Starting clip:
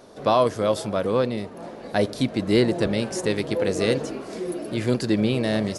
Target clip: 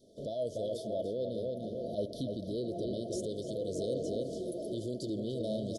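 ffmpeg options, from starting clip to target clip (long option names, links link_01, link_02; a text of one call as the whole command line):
ffmpeg -i in.wav -filter_complex "[0:a]asettb=1/sr,asplit=3[link_01][link_02][link_03];[link_01]atrim=end=0.774[link_04];[link_02]atrim=start=0.77:end=3.11,asetpts=PTS-STARTPTS,afade=type=in:duration=0.004:curve=qsin,afade=type=out:start_time=2.336:duration=0.004:curve=qsin,equalizer=frequency=7600:width=2.8:gain=-12[link_05];[link_03]atrim=start=3.106[link_06];[link_04][link_05]acrossfade=duration=0.004:curve1=hsin:curve2=qsin[link_07];[link_07][link_06]acrossfade=duration=0.004:curve1=qsin:curve2=hsin,asplit=2[link_08][link_09];[link_09]adelay=294,lowpass=frequency=3900:poles=1,volume=-6.5dB,asplit=2[link_10][link_11];[link_11]adelay=294,lowpass=frequency=3900:poles=1,volume=0.34,asplit=2[link_12][link_13];[link_13]adelay=294,lowpass=frequency=3900:poles=1,volume=0.34,asplit=2[link_14][link_15];[link_15]adelay=294,lowpass=frequency=3900:poles=1,volume=0.34[link_16];[link_08][link_10][link_12][link_14][link_16]amix=inputs=5:normalize=0,acompressor=threshold=-33dB:ratio=2,alimiter=limit=-23dB:level=0:latency=1:release=14,acompressor=mode=upward:threshold=-44dB:ratio=2.5,adynamicequalizer=threshold=0.00631:dfrequency=620:dqfactor=1.7:tfrequency=620:tqfactor=1.7:attack=5:release=100:ratio=0.375:range=2.5:mode=boostabove:tftype=bell,afftfilt=real='re*(1-between(b*sr/4096,710,3000))':imag='im*(1-between(b*sr/4096,710,3000))':win_size=4096:overlap=0.75,agate=range=-9dB:threshold=-41dB:ratio=16:detection=peak,aphaser=in_gain=1:out_gain=1:delay=3:decay=0.22:speed=0.49:type=sinusoidal,volume=-5.5dB" out.wav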